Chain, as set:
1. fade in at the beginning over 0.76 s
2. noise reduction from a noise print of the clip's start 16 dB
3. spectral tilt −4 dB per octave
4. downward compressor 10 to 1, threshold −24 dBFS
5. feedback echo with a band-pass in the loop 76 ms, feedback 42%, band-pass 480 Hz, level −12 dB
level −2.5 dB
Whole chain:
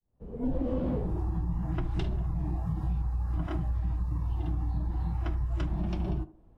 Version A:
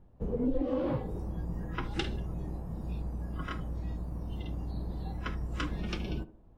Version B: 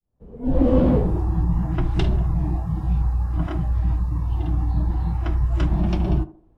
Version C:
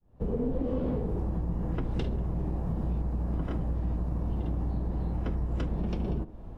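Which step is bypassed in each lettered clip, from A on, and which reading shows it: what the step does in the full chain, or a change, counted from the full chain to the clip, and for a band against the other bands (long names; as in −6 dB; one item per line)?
1, 2 kHz band +7.5 dB
4, average gain reduction 8.5 dB
2, 500 Hz band +4.0 dB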